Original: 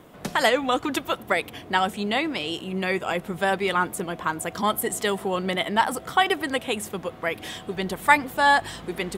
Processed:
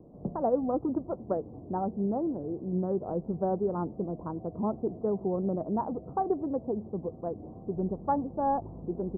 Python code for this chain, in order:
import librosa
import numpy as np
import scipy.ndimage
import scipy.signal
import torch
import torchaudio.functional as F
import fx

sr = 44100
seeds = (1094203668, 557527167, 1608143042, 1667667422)

y = fx.wiener(x, sr, points=25)
y = fx.vibrato(y, sr, rate_hz=2.8, depth_cents=59.0)
y = scipy.ndimage.gaussian_filter1d(y, 12.0, mode='constant')